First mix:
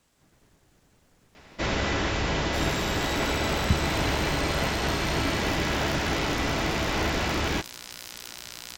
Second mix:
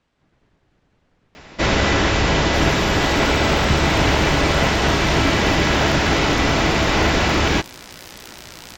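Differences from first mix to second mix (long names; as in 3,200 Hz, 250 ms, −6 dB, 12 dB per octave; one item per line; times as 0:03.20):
speech: add low-pass filter 3,500 Hz 12 dB per octave
first sound +9.5 dB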